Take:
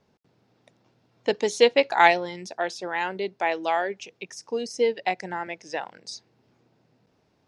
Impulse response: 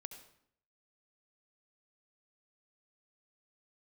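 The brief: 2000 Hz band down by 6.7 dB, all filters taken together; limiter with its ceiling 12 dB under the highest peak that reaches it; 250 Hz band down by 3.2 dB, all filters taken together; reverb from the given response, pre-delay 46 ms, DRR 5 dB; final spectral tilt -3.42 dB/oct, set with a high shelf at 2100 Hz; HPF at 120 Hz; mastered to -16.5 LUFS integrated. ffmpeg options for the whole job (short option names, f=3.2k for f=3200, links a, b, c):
-filter_complex "[0:a]highpass=120,equalizer=f=250:t=o:g=-4,equalizer=f=2k:t=o:g=-6.5,highshelf=f=2.1k:g=-3,alimiter=limit=-17.5dB:level=0:latency=1,asplit=2[a][b];[1:a]atrim=start_sample=2205,adelay=46[c];[b][c]afir=irnorm=-1:irlink=0,volume=-0.5dB[d];[a][d]amix=inputs=2:normalize=0,volume=13.5dB"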